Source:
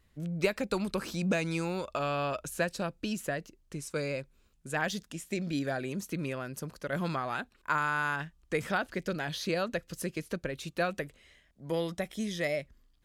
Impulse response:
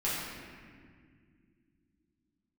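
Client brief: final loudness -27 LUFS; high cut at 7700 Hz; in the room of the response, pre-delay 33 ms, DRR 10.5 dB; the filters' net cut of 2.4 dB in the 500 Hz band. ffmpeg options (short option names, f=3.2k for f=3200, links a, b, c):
-filter_complex "[0:a]lowpass=7.7k,equalizer=f=500:t=o:g=-3,asplit=2[a][b];[1:a]atrim=start_sample=2205,adelay=33[c];[b][c]afir=irnorm=-1:irlink=0,volume=-18.5dB[d];[a][d]amix=inputs=2:normalize=0,volume=7.5dB"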